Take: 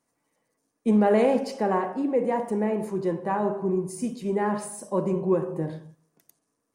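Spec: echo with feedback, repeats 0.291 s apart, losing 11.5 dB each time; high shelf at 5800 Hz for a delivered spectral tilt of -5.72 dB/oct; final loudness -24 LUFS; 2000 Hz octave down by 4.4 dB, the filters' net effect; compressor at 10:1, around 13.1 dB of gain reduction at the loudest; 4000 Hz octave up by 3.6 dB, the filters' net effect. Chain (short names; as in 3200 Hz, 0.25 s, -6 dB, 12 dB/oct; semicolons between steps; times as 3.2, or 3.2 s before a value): bell 2000 Hz -7 dB; bell 4000 Hz +8.5 dB; high shelf 5800 Hz -3.5 dB; compressor 10:1, threshold -30 dBFS; feedback echo 0.291 s, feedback 27%, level -11.5 dB; gain +11 dB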